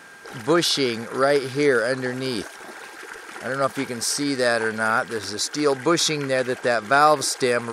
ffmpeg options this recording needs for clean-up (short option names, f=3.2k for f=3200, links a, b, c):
-af "bandreject=f=1.6k:w=30"